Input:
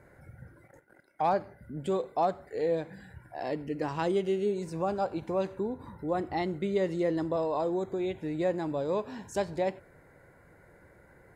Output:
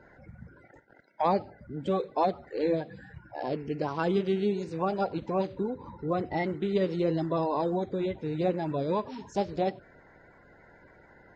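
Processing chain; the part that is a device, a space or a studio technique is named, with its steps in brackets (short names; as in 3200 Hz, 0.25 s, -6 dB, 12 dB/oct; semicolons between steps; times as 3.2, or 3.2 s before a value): clip after many re-uploads (LPF 5700 Hz 24 dB/oct; bin magnitudes rounded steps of 30 dB); gain +2 dB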